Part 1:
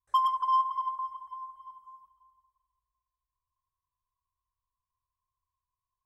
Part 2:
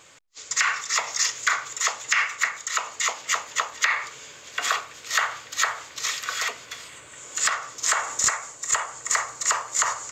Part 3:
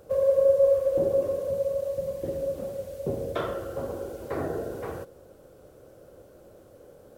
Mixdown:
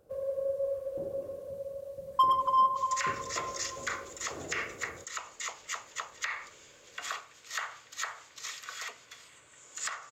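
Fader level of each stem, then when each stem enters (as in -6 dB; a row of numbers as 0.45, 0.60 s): +1.0, -13.0, -12.5 dB; 2.05, 2.40, 0.00 s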